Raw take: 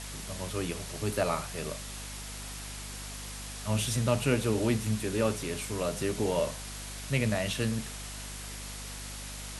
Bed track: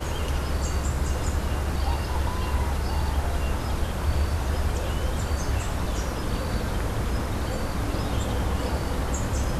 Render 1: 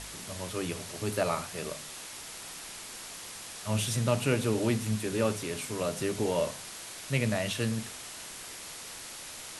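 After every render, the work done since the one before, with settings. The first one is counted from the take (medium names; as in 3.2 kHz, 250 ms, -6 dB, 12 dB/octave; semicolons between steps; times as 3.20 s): de-hum 50 Hz, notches 5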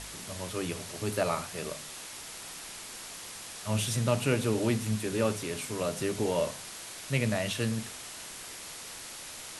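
no audible change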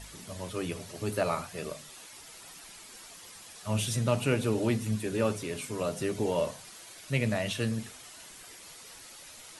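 noise reduction 9 dB, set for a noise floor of -44 dBFS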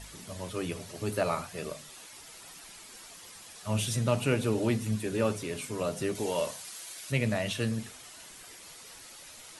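6.15–7.12 s: tilt EQ +2 dB/octave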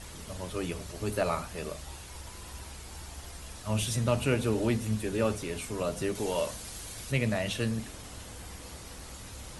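add bed track -20 dB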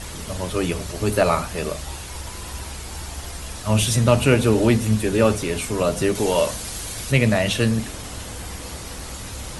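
trim +11 dB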